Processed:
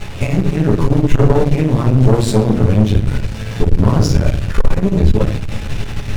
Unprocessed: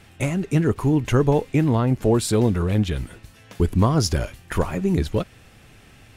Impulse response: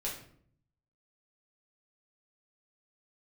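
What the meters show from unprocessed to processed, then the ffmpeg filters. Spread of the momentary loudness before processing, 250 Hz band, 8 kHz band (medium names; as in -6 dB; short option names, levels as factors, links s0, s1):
8 LU, +6.0 dB, +1.0 dB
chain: -filter_complex "[0:a]aeval=exprs='val(0)+0.5*0.0596*sgn(val(0))':c=same,lowshelf=f=180:g=9.5,adynamicsmooth=sensitivity=7:basefreq=2500[s0];[1:a]atrim=start_sample=2205[s1];[s0][s1]afir=irnorm=-1:irlink=0,aeval=exprs='(tanh(2.51*val(0)+0.8)-tanh(0.8))/2.51':c=same,volume=1.33"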